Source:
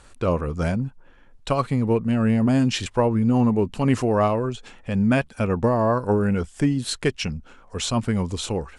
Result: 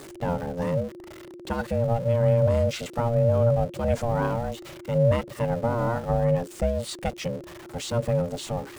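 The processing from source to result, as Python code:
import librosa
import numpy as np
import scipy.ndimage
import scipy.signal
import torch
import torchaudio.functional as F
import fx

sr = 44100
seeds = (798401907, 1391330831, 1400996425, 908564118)

y = x + 0.5 * 10.0 ** (-29.0 / 20.0) * np.sign(x)
y = fx.peak_eq(y, sr, hz=210.0, db=10.0, octaves=0.88)
y = y * np.sin(2.0 * np.pi * 350.0 * np.arange(len(y)) / sr)
y = y * librosa.db_to_amplitude(-7.0)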